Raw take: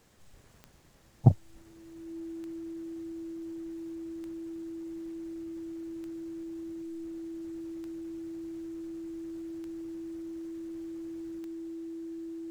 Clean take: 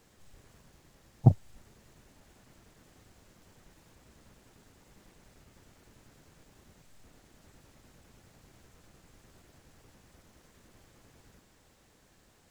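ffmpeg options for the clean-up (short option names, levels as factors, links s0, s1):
-af "adeclick=t=4,bandreject=f=330:w=30"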